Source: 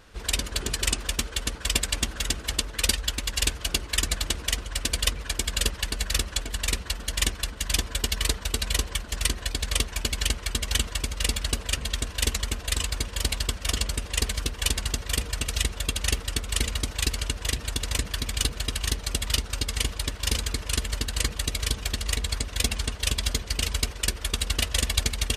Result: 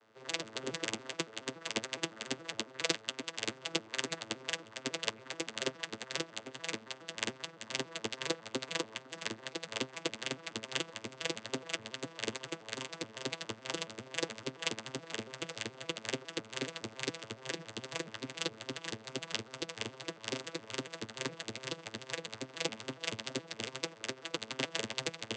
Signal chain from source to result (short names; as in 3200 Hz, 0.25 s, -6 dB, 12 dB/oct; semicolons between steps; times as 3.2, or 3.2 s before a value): arpeggiated vocoder minor triad, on A2, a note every 0.14 s; HPF 340 Hz 12 dB/oct; upward expander 1.5:1, over -45 dBFS